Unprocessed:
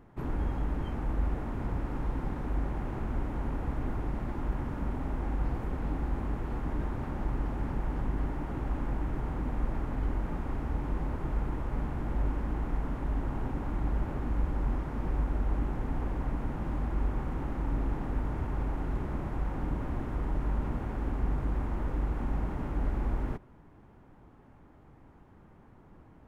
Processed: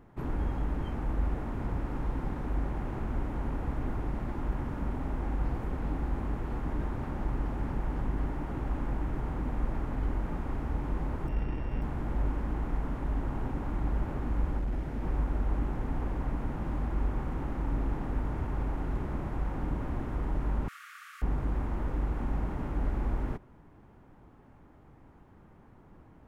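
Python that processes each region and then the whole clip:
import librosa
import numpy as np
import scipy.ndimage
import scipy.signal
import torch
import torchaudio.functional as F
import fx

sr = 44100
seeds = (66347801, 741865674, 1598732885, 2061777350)

y = fx.sample_sort(x, sr, block=16, at=(11.27, 11.81), fade=0.02)
y = fx.lowpass(y, sr, hz=1700.0, slope=12, at=(11.27, 11.81), fade=0.02)
y = fx.dmg_crackle(y, sr, seeds[0], per_s=120.0, level_db=-57.0, at=(11.27, 11.81), fade=0.02)
y = fx.chain(y, sr, fx.peak_eq(hz=1100.0, db=-7.5, octaves=0.57),
    fx.overload_stage(gain_db=27.0), at=(14.58, 15.02))
y = fx.chain(y, sr, fx.brickwall_highpass(low_hz=1100.0),
    fx.high_shelf(hz=2800.0, db=11.0), at=(20.68, 21.22))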